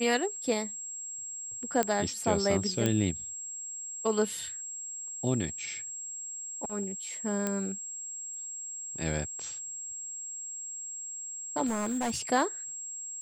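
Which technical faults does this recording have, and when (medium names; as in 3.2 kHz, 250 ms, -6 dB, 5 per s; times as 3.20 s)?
whine 7.6 kHz -37 dBFS
1.83 s: pop -12 dBFS
2.86 s: pop -13 dBFS
7.47 s: pop -16 dBFS
11.66–12.21 s: clipped -27 dBFS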